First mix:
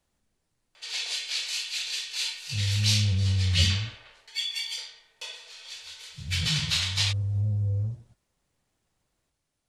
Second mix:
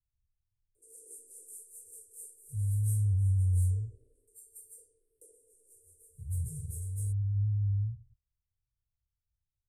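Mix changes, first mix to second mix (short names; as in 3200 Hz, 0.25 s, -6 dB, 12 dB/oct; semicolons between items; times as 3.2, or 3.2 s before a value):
speech: muted; second sound: add inverse Chebyshev low-pass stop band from 650 Hz, stop band 80 dB; master: add Chebyshev band-stop 450–8600 Hz, order 5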